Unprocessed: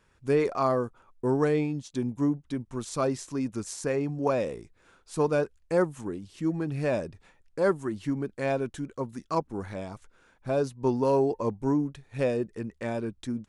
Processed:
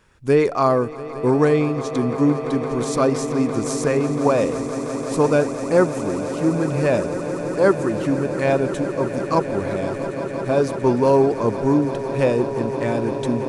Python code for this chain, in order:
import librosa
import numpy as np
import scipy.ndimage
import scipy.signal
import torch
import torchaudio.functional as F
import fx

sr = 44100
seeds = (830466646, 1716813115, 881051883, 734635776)

y = fx.echo_swell(x, sr, ms=171, loudest=8, wet_db=-16.0)
y = y * librosa.db_to_amplitude(8.0)